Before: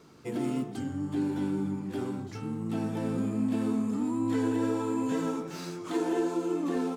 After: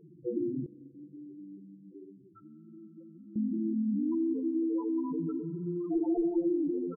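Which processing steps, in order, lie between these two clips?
one-sided wavefolder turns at -24.5 dBFS; comb 5.9 ms, depth 48%; compression 2:1, threshold -32 dBFS, peak gain reduction 5.5 dB; loudest bins only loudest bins 4; 0.66–3.36 s: band-pass filter 3.3 kHz, Q 0.63; spring tank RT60 3.7 s, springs 44 ms, chirp 60 ms, DRR 17 dB; trim +4 dB

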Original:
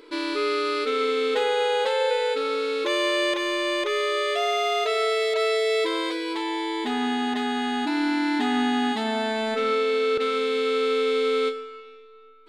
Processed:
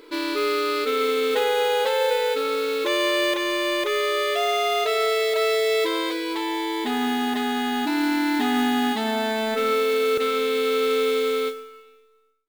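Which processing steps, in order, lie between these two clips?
fade out at the end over 1.45 s; modulation noise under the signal 21 dB; trim +1.5 dB

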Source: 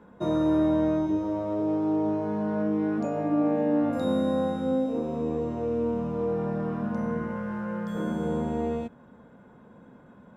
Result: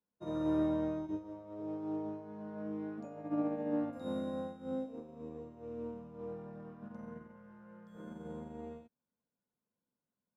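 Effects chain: upward expansion 2.5:1, over -44 dBFS; trim -7.5 dB

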